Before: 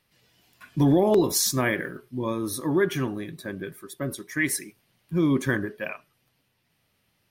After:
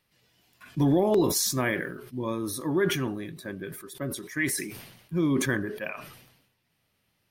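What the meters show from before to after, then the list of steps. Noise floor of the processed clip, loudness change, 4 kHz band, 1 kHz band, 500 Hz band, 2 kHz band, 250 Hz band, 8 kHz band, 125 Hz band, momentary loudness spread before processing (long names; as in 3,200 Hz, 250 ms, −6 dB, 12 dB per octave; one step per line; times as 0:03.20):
−74 dBFS, −2.5 dB, −1.0 dB, −2.5 dB, −2.5 dB, −2.0 dB, −2.5 dB, −2.0 dB, −2.5 dB, 15 LU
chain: level that may fall only so fast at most 60 dB per second
level −3 dB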